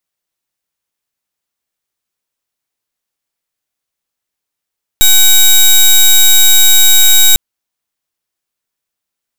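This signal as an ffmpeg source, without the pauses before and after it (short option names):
-f lavfi -i "aevalsrc='0.562*(2*lt(mod(3800*t,1),0.14)-1)':d=2.35:s=44100"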